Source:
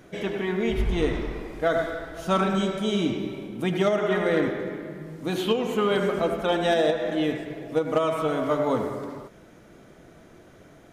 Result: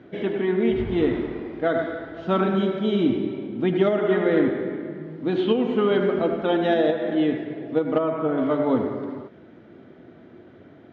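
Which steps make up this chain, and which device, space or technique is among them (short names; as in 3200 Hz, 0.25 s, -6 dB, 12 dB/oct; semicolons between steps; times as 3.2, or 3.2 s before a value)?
7.98–8.38 LPF 1800 Hz 12 dB/oct; guitar cabinet (speaker cabinet 98–3500 Hz, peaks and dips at 100 Hz +7 dB, 250 Hz +8 dB, 360 Hz +6 dB, 1100 Hz -3 dB, 2500 Hz -4 dB)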